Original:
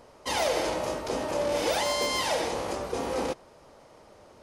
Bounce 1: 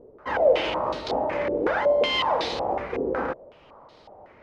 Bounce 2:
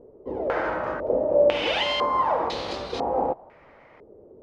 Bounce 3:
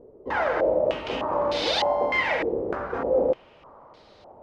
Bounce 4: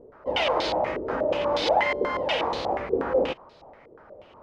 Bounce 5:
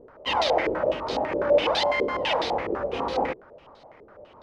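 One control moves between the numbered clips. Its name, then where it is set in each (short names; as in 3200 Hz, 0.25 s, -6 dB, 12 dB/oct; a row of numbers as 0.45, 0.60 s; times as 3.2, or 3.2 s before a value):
stepped low-pass, rate: 5.4, 2, 3.3, 8.3, 12 Hz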